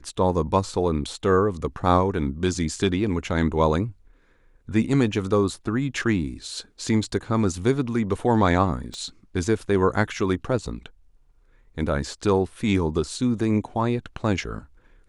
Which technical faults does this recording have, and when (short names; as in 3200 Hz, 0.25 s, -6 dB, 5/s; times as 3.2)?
8.94 pop -24 dBFS